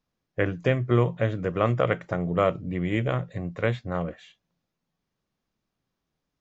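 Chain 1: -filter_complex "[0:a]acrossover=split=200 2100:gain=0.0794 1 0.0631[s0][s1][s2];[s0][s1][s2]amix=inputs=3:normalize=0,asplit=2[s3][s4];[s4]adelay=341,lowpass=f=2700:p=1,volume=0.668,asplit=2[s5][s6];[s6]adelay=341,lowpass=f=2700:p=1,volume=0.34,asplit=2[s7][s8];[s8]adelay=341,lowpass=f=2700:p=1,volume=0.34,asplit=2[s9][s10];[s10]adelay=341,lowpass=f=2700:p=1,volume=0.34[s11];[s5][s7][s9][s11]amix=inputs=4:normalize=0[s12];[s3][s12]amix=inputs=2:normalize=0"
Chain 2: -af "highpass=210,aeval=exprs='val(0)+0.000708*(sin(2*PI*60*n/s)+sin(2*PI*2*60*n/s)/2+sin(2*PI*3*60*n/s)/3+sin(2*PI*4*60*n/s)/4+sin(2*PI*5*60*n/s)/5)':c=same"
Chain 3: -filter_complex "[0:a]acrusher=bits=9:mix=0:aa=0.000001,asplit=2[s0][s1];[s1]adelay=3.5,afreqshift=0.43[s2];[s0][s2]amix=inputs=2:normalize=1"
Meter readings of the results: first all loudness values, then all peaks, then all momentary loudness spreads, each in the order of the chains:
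-28.0 LUFS, -28.5 LUFS, -29.5 LUFS; -9.5 dBFS, -8.5 dBFS, -12.5 dBFS; 12 LU, 8 LU, 10 LU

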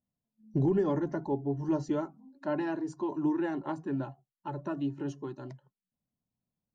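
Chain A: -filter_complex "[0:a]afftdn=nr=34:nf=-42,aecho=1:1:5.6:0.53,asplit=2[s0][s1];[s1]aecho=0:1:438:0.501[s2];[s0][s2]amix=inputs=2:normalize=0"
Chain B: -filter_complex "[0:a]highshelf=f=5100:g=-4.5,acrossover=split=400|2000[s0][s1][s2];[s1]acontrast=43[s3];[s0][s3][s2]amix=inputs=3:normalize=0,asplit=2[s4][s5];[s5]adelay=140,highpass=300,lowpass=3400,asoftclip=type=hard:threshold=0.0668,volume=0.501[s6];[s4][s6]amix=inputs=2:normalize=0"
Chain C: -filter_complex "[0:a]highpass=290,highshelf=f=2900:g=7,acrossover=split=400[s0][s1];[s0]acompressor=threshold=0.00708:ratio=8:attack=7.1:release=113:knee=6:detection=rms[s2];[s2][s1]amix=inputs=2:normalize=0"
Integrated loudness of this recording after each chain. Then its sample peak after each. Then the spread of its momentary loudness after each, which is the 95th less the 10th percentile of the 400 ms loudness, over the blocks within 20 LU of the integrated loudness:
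-31.0 LUFS, -30.0 LUFS, -38.5 LUFS; -14.5 dBFS, -15.5 dBFS, -21.5 dBFS; 13 LU, 12 LU, 10 LU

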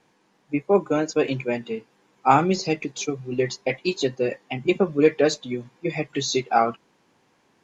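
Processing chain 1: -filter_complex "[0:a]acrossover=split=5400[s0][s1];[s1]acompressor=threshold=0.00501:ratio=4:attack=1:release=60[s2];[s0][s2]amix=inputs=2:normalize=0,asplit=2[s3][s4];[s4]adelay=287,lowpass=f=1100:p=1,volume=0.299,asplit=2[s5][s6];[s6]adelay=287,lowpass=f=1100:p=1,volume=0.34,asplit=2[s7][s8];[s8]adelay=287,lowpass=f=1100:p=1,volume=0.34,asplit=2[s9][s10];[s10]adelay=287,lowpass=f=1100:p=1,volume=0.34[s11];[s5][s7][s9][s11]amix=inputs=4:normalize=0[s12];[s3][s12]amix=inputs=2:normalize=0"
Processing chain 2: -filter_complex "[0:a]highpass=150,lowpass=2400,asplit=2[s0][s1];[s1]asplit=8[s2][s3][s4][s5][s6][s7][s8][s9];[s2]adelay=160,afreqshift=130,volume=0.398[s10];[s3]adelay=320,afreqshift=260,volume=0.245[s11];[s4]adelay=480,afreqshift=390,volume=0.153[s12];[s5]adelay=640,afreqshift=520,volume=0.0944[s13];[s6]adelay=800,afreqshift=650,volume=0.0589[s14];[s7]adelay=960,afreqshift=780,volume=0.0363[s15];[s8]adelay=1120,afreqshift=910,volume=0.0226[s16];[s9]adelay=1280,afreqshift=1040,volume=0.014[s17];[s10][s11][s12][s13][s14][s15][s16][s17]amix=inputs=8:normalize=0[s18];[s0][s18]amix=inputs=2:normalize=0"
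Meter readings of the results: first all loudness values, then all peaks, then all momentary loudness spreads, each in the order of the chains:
-24.0 LUFS, -23.5 LUFS; -3.0 dBFS, -2.5 dBFS; 11 LU, 12 LU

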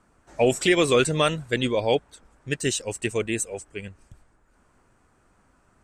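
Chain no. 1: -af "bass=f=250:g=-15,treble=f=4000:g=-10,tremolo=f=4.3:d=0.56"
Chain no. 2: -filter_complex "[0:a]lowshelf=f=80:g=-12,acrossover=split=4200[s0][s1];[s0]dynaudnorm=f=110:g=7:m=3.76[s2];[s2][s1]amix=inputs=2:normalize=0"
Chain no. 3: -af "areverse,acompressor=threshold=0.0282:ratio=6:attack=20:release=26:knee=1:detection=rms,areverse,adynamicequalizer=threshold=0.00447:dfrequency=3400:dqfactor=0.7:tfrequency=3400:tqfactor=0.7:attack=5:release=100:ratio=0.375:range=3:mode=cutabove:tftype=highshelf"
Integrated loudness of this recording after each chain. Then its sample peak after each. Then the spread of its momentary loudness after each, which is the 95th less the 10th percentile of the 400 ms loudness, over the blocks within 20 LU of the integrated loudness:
-28.5 LUFS, -17.5 LUFS, -32.5 LUFS; -9.5 dBFS, -1.0 dBFS, -17.0 dBFS; 17 LU, 13 LU, 10 LU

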